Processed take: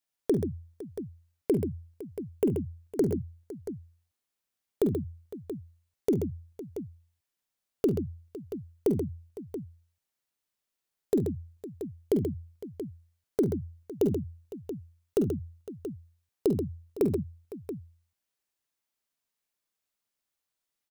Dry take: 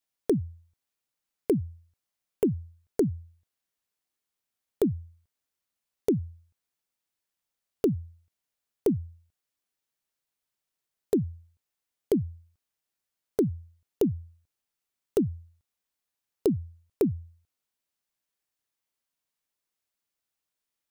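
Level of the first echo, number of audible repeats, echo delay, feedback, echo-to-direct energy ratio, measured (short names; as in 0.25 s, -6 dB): -12.0 dB, 4, 46 ms, no steady repeat, -4.0 dB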